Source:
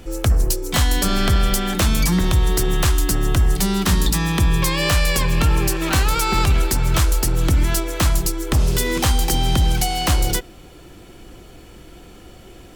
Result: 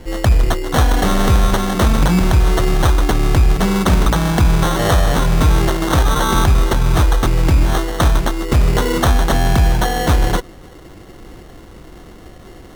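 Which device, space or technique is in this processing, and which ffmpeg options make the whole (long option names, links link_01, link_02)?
crushed at another speed: -af "asetrate=22050,aresample=44100,acrusher=samples=36:mix=1:aa=0.000001,asetrate=88200,aresample=44100,volume=4dB"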